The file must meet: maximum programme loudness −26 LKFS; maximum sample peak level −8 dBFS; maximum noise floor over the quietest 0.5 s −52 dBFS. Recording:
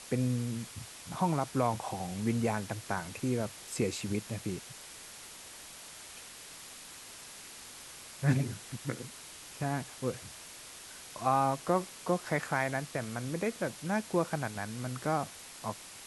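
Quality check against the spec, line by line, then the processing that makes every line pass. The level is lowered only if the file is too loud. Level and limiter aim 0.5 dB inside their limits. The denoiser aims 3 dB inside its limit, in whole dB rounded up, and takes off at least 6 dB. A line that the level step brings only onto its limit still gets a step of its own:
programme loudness −34.0 LKFS: in spec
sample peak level −15.0 dBFS: in spec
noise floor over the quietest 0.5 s −49 dBFS: out of spec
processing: broadband denoise 6 dB, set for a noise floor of −49 dBFS

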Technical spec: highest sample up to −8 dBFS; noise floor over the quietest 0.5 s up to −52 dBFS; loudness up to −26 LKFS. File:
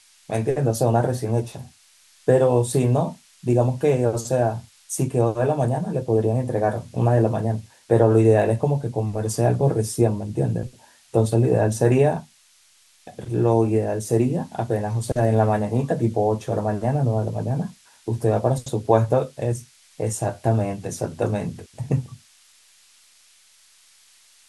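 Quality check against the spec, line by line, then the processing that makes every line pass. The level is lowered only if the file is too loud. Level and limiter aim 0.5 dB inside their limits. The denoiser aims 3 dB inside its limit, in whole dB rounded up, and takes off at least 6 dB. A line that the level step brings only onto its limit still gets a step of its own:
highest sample −4.0 dBFS: out of spec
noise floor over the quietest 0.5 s −57 dBFS: in spec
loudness −22.0 LKFS: out of spec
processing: level −4.5 dB

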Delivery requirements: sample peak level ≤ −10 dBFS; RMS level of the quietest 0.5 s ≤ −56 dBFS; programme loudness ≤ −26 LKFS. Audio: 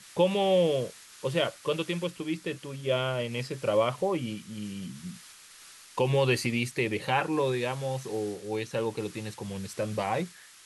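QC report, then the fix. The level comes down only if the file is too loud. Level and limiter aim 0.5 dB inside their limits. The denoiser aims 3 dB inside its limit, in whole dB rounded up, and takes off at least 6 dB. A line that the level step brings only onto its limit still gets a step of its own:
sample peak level −12.5 dBFS: in spec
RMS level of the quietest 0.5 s −51 dBFS: out of spec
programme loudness −30.0 LKFS: in spec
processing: broadband denoise 8 dB, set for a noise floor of −51 dBFS

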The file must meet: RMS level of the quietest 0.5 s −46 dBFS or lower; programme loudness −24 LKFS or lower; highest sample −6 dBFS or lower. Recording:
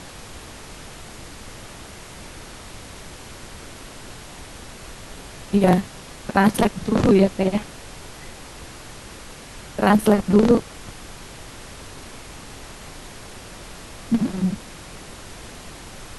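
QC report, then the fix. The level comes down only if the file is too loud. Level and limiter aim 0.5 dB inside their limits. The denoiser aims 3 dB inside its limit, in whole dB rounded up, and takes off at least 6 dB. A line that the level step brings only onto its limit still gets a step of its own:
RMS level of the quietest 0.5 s −39 dBFS: out of spec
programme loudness −19.5 LKFS: out of spec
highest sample −4.5 dBFS: out of spec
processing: broadband denoise 6 dB, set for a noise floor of −39 dBFS
level −5 dB

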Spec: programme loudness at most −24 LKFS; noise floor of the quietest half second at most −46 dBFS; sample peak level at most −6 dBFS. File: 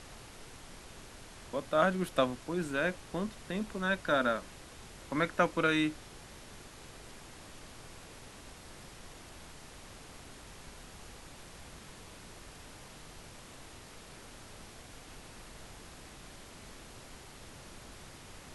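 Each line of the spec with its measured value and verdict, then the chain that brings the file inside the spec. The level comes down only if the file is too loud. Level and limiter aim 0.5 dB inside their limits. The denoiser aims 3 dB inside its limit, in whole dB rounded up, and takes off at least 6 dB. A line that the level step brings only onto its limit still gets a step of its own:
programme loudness −32.0 LKFS: in spec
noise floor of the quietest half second −51 dBFS: in spec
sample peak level −12.5 dBFS: in spec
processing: no processing needed

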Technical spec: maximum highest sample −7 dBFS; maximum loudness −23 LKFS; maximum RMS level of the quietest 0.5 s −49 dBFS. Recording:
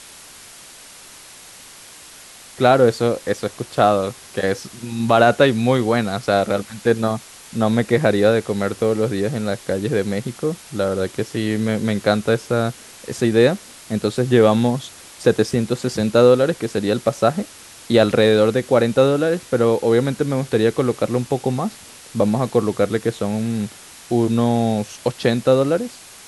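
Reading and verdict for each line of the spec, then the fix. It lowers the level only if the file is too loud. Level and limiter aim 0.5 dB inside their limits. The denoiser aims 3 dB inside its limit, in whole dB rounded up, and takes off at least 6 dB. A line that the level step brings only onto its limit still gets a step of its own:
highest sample −2.0 dBFS: out of spec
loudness −19.0 LKFS: out of spec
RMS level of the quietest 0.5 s −42 dBFS: out of spec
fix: broadband denoise 6 dB, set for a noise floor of −42 dBFS
level −4.5 dB
brickwall limiter −7.5 dBFS

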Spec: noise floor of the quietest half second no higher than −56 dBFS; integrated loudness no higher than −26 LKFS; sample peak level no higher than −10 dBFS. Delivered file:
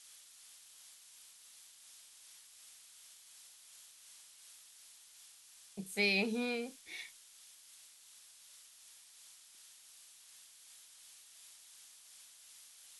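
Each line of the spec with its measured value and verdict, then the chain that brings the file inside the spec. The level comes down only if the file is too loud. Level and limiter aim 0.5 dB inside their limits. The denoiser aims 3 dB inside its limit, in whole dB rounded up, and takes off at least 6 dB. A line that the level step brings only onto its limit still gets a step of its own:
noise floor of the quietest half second −60 dBFS: in spec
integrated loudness −36.0 LKFS: in spec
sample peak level −22.0 dBFS: in spec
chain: no processing needed

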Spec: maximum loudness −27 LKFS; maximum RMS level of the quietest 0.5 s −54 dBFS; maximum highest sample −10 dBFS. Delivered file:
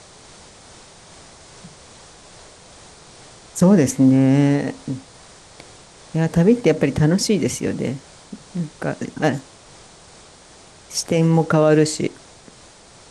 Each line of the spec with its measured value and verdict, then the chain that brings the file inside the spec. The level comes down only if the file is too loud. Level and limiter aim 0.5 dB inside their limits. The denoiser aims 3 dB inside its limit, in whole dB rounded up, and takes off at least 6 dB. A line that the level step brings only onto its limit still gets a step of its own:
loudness −18.5 LKFS: out of spec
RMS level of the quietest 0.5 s −46 dBFS: out of spec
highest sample −4.0 dBFS: out of spec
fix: level −9 dB

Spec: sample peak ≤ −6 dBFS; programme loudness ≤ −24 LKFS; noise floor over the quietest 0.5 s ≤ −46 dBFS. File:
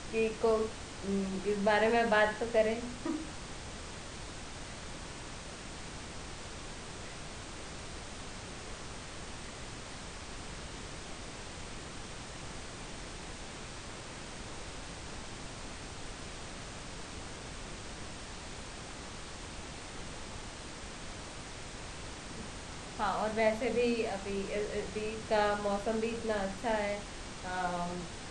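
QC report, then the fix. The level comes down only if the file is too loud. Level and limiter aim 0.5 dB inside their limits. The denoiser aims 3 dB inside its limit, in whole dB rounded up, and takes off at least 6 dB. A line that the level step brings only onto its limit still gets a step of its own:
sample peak −16.0 dBFS: in spec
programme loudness −37.0 LKFS: in spec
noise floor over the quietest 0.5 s −45 dBFS: out of spec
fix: broadband denoise 6 dB, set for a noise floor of −45 dBFS

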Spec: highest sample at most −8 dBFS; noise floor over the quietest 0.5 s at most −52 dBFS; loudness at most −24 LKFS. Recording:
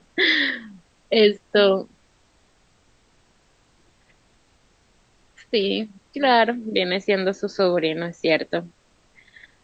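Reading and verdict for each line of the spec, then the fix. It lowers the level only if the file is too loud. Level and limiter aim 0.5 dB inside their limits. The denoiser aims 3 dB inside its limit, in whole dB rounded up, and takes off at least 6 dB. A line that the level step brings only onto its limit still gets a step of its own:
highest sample −6.0 dBFS: out of spec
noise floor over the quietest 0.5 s −60 dBFS: in spec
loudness −21.0 LKFS: out of spec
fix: level −3.5 dB

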